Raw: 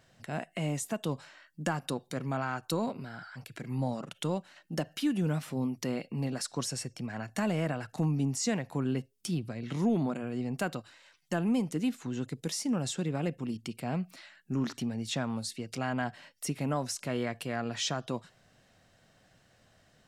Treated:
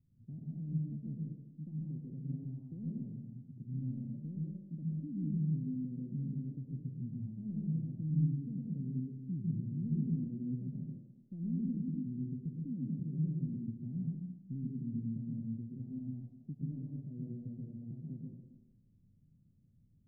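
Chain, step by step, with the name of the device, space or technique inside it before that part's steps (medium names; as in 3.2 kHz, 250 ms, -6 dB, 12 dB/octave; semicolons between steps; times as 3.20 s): club heard from the street (peak limiter -26.5 dBFS, peak gain reduction 9 dB; low-pass 230 Hz 24 dB/octave; reverberation RT60 1.1 s, pre-delay 109 ms, DRR -3.5 dB); trim -3.5 dB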